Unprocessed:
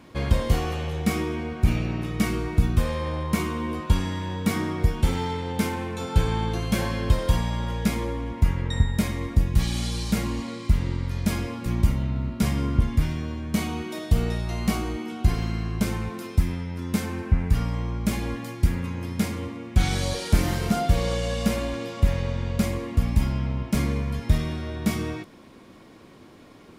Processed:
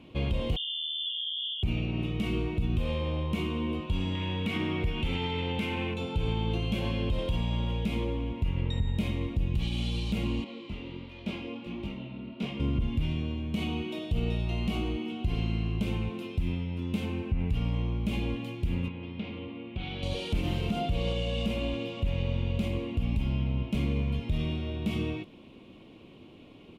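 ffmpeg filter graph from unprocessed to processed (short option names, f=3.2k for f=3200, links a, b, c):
-filter_complex "[0:a]asettb=1/sr,asplit=3[a][b][c];[a]atrim=end=0.564[d];[b]atrim=start=0.56:end=1.63,asetpts=PTS-STARTPTS,afade=t=in:d=0.004:c=qsin,afade=t=out:st=1.066:d=0.004:c=qsin,asuperstop=centerf=1800:order=20:qfactor=0.51,lowpass=f=3.1k:t=q:w=0.5098,lowpass=f=3.1k:t=q:w=0.6013,lowpass=f=3.1k:t=q:w=0.9,lowpass=f=3.1k:t=q:w=2.563,afreqshift=-3600[e];[c]atrim=start=1.626[f];[d][e]acrossfade=d=0.004:c1=hsin:c2=qsin[g];[g][f]acrossfade=d=0.004:c1=qsin:c2=hsin,asettb=1/sr,asplit=3[h][i][j];[h]atrim=end=4.154[k];[i]atrim=start=4.15:end=5.94,asetpts=PTS-STARTPTS,afade=t=in:d=0.004:c=qsin,afade=t=out:st=1.786:d=0.004:c=qsin,equalizer=f=2k:w=0.9:g=8.5,acompressor=mode=upward:threshold=-25dB:ratio=2.5:attack=3.2:release=140:knee=2.83:detection=peak[l];[j]atrim=start=5.936[m];[k][l]acrossfade=d=0.004:c1=hsin:c2=qsin[n];[n][m]acrossfade=d=0.004:c1=qsin:c2=hsin,asettb=1/sr,asplit=3[o][p][q];[o]atrim=end=10.444[r];[p]atrim=start=10.44:end=12.6,asetpts=PTS-STARTPTS,afade=t=in:d=0.004:c=qsin,afade=t=out:st=2.156:d=0.004:c=qsin,flanger=delay=19.5:depth=6.1:speed=1.4,acrossover=split=200 5500:gain=0.112 1 0.224[s][t][u];[s][t][u]amix=inputs=3:normalize=0[v];[q]atrim=start=12.596[w];[r][v]acrossfade=d=0.004:c1=hsin:c2=qsin[x];[x][w]acrossfade=d=0.004:c1=qsin:c2=hsin,asettb=1/sr,asplit=3[y][z][aa];[y]atrim=end=18.884[ab];[z]atrim=start=18.88:end=20.03,asetpts=PTS-STARTPTS,afade=t=in:d=0.004:c=qsin,afade=t=out:st=1.146:d=0.004:c=qsin,lowpass=f=3.8k:w=0.5412,lowpass=f=3.8k:w=1.3066,lowshelf=f=150:g=-9.5,acompressor=threshold=-34dB:ratio=2:attack=3.2:release=140:knee=1:detection=peak[ac];[aa]atrim=start=20.026[ad];[ab][ac]acrossfade=d=0.004:c1=hsin:c2=qsin[ae];[ae][ad]acrossfade=d=0.004:c1=qsin:c2=hsin,firequalizer=gain_entry='entry(330,0);entry(1700,-10);entry(2700,13);entry(5000,-4)':delay=0.05:min_phase=1,alimiter=limit=-17.5dB:level=0:latency=1:release=80,highshelf=f=2.3k:g=-10.5,volume=-1.5dB"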